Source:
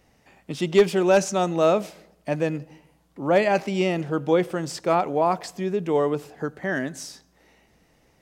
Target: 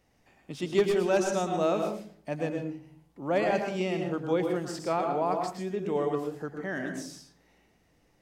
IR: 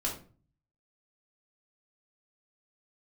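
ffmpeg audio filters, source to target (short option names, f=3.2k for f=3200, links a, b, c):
-filter_complex "[0:a]asplit=2[a][b];[1:a]atrim=start_sample=2205,asetrate=48510,aresample=44100,adelay=109[c];[b][c]afir=irnorm=-1:irlink=0,volume=-7.5dB[d];[a][d]amix=inputs=2:normalize=0,volume=-8dB"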